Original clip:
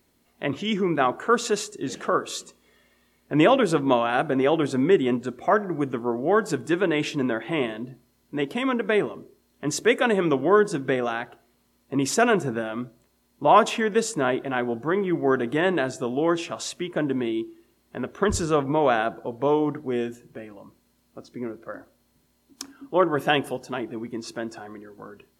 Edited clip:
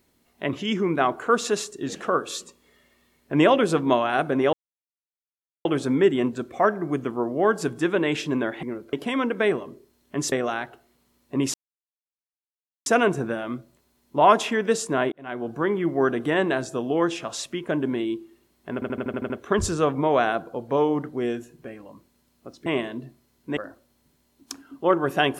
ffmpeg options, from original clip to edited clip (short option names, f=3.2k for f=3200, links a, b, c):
-filter_complex "[0:a]asplit=16[a][b][c][d][e][f][g][h][i][j][k][l][m][n][o][p];[a]atrim=end=4.53,asetpts=PTS-STARTPTS,afade=t=out:st=4.526:d=0.004:c=hsin,apad=pad_dur=1.12[q];[b]atrim=start=4.53:end=7.512,asetpts=PTS-STARTPTS,afade=t=in:d=0.004:c=hsin[r];[c]atrim=start=21.368:end=21.672[s];[d]atrim=start=8.418:end=9.812[t];[e]atrim=start=10.908:end=12.13,asetpts=PTS-STARTPTS,afade=t=out:st=1.218:d=0.004:c=hsin,apad=pad_dur=1.32[u];[f]atrim=start=12.13:end=14.39,asetpts=PTS-STARTPTS,afade=t=in:d=0.004:c=hsin,afade=t=out:st=2.256:d=0.004:c=hsin[v];[g]atrim=start=14.39:end=18.092,asetpts=PTS-STARTPTS,afade=t=in:d=0.45[w];[h]atrim=start=18.008:end=18.092[x];[i]atrim=start=18.008:end=18.092[y];[j]atrim=start=18.008:end=18.092[z];[k]atrim=start=18.008:end=18.092[aa];[l]atrim=start=18.008:end=18.092[ab];[m]atrim=start=18.008:end=18.092[ac];[n]atrim=start=18.008:end=21.372[ad];[o]atrim=start=7.508:end=8.422[ae];[p]atrim=start=21.668[af];[q][r]concat=n=2:v=0:a=1[ag];[ag][s]acrossfade=d=0.004:c1=hsin:c2=hsin[ah];[ah][t]acrossfade=d=0.004:c1=hsin:c2=hsin[ai];[u][v][w]concat=n=3:v=0:a=1[aj];[ai][aj]acrossfade=d=0.004:c1=hsin:c2=hsin[ak];[ak][x]acrossfade=d=0.004:c1=hsin:c2=hsin[al];[al][y]acrossfade=d=0.004:c1=hsin:c2=hsin[am];[am][z]acrossfade=d=0.004:c1=hsin:c2=hsin[an];[an][aa]acrossfade=d=0.004:c1=hsin:c2=hsin[ao];[ao][ab]acrossfade=d=0.004:c1=hsin:c2=hsin[ap];[ap][ac]acrossfade=d=0.004:c1=hsin:c2=hsin[aq];[aq][ad]acrossfade=d=0.004:c1=hsin:c2=hsin[ar];[ar][ae]acrossfade=d=0.004:c1=hsin:c2=hsin[as];[as][af]acrossfade=d=0.004:c1=hsin:c2=hsin"